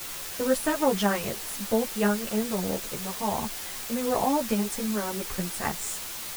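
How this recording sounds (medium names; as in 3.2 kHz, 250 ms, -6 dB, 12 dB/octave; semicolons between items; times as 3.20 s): a quantiser's noise floor 6-bit, dither triangular; a shimmering, thickened sound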